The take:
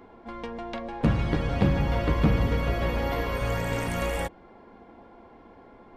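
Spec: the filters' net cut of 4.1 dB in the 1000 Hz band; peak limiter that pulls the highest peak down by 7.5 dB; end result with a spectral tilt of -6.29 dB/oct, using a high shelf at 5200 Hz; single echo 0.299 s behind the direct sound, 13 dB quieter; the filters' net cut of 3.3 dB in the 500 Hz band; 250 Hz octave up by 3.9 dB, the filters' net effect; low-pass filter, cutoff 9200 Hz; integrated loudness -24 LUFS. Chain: LPF 9200 Hz; bell 250 Hz +6.5 dB; bell 500 Hz -4.5 dB; bell 1000 Hz -4 dB; high shelf 5200 Hz -5.5 dB; limiter -16.5 dBFS; echo 0.299 s -13 dB; gain +4.5 dB

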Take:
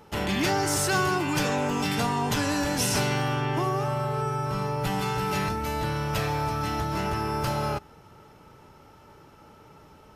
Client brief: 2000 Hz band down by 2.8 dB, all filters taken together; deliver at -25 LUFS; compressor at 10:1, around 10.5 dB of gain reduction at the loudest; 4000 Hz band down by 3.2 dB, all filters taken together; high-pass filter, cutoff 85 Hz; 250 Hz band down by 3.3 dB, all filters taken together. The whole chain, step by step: HPF 85 Hz; bell 250 Hz -4.5 dB; bell 2000 Hz -3 dB; bell 4000 Hz -3.5 dB; compressor 10:1, threshold -34 dBFS; gain +12.5 dB

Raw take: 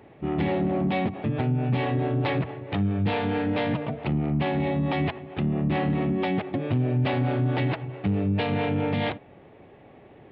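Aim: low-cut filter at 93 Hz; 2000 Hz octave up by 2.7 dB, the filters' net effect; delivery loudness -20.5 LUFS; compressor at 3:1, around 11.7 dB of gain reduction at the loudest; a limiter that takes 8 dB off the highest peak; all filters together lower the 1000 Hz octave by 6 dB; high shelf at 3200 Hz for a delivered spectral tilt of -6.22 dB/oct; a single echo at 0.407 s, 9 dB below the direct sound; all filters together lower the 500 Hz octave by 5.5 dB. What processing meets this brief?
HPF 93 Hz; bell 500 Hz -6 dB; bell 1000 Hz -6.5 dB; bell 2000 Hz +7 dB; high shelf 3200 Hz -6 dB; compressor 3:1, threshold -39 dBFS; limiter -31.5 dBFS; echo 0.407 s -9 dB; gain +19.5 dB

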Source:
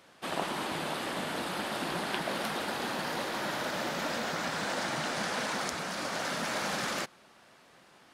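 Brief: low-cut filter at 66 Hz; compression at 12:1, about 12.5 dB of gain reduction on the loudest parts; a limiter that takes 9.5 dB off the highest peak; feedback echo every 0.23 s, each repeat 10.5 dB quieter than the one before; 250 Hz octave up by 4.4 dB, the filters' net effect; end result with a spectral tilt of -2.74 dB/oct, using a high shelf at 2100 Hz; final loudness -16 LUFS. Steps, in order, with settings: HPF 66 Hz; bell 250 Hz +5.5 dB; high shelf 2100 Hz +4 dB; compressor 12:1, threshold -40 dBFS; limiter -35 dBFS; feedback echo 0.23 s, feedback 30%, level -10.5 dB; gain +28 dB

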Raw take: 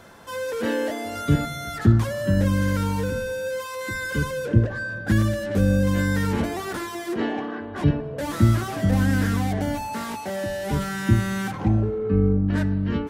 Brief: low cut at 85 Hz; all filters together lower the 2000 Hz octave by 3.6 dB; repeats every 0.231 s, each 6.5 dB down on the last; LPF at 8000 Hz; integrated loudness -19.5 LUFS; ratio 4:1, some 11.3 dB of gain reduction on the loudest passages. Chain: HPF 85 Hz; LPF 8000 Hz; bell 2000 Hz -5 dB; compressor 4:1, threshold -26 dBFS; feedback echo 0.231 s, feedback 47%, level -6.5 dB; gain +10 dB

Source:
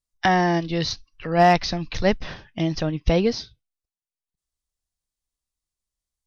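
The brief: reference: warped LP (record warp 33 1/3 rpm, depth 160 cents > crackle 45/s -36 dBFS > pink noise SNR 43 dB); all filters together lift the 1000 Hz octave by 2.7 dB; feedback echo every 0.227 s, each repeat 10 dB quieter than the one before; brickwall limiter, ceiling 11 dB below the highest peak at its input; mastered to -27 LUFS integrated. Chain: bell 1000 Hz +4.5 dB; limiter -15.5 dBFS; feedback echo 0.227 s, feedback 32%, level -10 dB; record warp 33 1/3 rpm, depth 160 cents; crackle 45/s -36 dBFS; pink noise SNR 43 dB; gain -0.5 dB

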